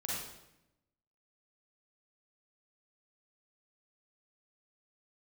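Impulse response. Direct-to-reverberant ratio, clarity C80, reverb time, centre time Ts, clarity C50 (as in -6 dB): -6.5 dB, 1.5 dB, 0.85 s, 78 ms, -3.0 dB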